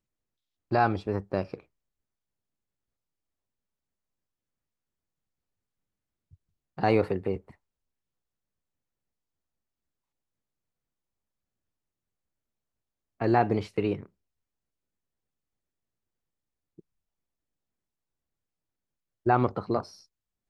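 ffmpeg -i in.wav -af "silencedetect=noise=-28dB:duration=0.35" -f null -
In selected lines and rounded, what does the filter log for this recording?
silence_start: 0.00
silence_end: 0.72 | silence_duration: 0.72
silence_start: 1.54
silence_end: 6.79 | silence_duration: 5.24
silence_start: 7.37
silence_end: 13.21 | silence_duration: 5.85
silence_start: 13.95
silence_end: 19.27 | silence_duration: 5.32
silence_start: 19.80
silence_end: 20.49 | silence_duration: 0.69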